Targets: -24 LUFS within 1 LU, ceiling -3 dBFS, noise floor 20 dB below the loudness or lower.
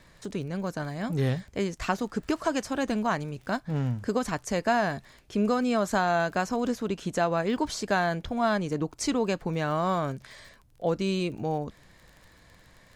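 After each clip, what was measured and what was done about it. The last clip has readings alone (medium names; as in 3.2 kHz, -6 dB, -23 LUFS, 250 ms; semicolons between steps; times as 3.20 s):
tick rate 27 per s; loudness -28.5 LUFS; peak level -12.5 dBFS; loudness target -24.0 LUFS
-> de-click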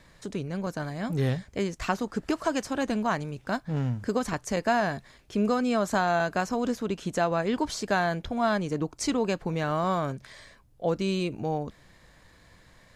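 tick rate 0 per s; loudness -28.5 LUFS; peak level -12.5 dBFS; loudness target -24.0 LUFS
-> trim +4.5 dB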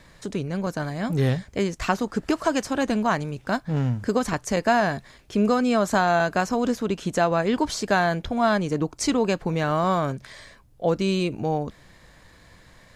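loudness -24.0 LUFS; peak level -8.0 dBFS; noise floor -53 dBFS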